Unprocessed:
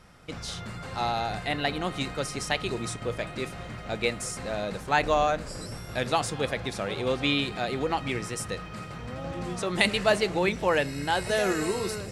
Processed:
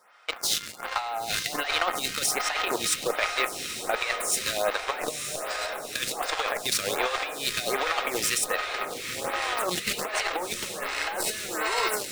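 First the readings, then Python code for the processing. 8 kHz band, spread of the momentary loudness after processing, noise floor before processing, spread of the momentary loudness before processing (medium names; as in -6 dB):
+9.5 dB, 6 LU, -40 dBFS, 12 LU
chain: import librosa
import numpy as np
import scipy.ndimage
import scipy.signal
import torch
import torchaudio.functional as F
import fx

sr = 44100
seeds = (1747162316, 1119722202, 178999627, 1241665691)

p1 = scipy.signal.sosfilt(scipy.signal.butter(2, 790.0, 'highpass', fs=sr, output='sos'), x)
p2 = fx.fuzz(p1, sr, gain_db=38.0, gate_db=-39.0)
p3 = p1 + (p2 * 10.0 ** (-5.5 / 20.0))
p4 = fx.over_compress(p3, sr, threshold_db=-24.0, ratio=-0.5)
p5 = p4 + fx.echo_diffused(p4, sr, ms=1051, feedback_pct=61, wet_db=-8, dry=0)
p6 = fx.quant_float(p5, sr, bits=2)
y = fx.stagger_phaser(p6, sr, hz=1.3)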